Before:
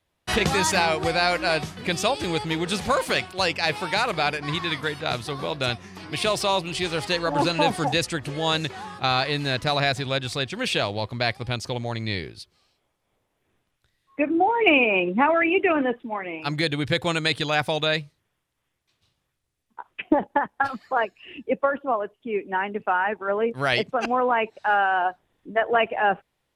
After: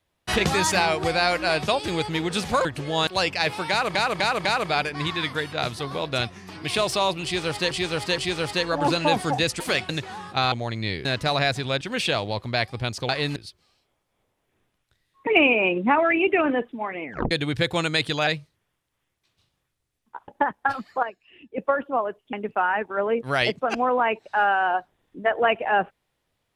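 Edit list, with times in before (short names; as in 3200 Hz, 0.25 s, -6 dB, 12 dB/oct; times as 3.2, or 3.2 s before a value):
1.68–2.04 cut
3.01–3.3 swap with 8.14–8.56
3.93–4.18 loop, 4 plays
6.72–7.19 loop, 3 plays
9.19–9.46 swap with 11.76–12.29
10.22–10.48 cut
14.2–14.58 cut
16.34 tape stop 0.28 s
17.58–17.91 cut
19.92–20.23 cut
20.98–21.53 gain -9.5 dB
22.28–22.64 cut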